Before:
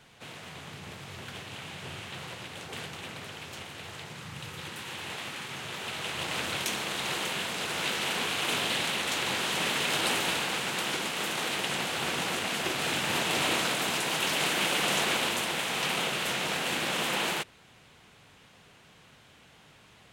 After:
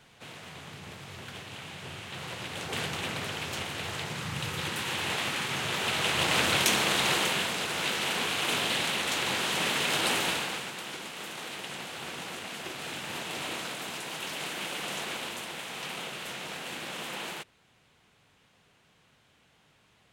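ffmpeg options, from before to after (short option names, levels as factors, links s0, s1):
-af "volume=2.24,afade=t=in:st=2.04:d=0.88:silence=0.398107,afade=t=out:st=6.91:d=0.77:silence=0.473151,afade=t=out:st=10.24:d=0.51:silence=0.375837"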